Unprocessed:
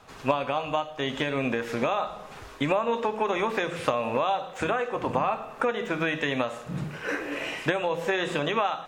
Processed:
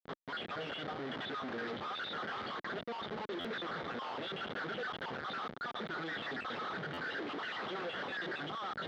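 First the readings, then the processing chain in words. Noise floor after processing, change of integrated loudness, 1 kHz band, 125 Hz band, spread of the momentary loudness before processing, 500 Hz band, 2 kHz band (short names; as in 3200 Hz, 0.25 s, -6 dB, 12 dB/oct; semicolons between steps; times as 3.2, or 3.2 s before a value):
-48 dBFS, -12.0 dB, -12.0 dB, -14.5 dB, 5 LU, -15.5 dB, -8.5 dB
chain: random spectral dropouts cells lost 58%; tilt shelf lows -3.5 dB, about 650 Hz; reverse; compressor 12:1, threshold -38 dBFS, peak gain reduction 20 dB; reverse; fixed phaser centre 2200 Hz, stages 6; on a send: band-limited delay 0.839 s, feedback 73%, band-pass 1000 Hz, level -22 dB; on the sum: Schmitt trigger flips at -56 dBFS; speaker cabinet 230–3500 Hz, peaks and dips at 300 Hz -4 dB, 990 Hz -8 dB, 2600 Hz -10 dB; stuck buffer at 3.4/6.93, samples 512, times 3; gain +11.5 dB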